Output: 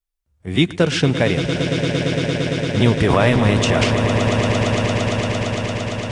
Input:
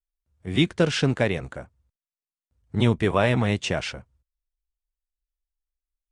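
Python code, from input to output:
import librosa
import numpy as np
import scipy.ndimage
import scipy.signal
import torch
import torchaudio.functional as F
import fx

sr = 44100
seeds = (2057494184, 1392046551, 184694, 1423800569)

y = fx.transient(x, sr, attack_db=-1, sustain_db=11, at=(3.0, 3.86))
y = fx.echo_swell(y, sr, ms=114, loudest=8, wet_db=-10.5)
y = y * librosa.db_to_amplitude(4.5)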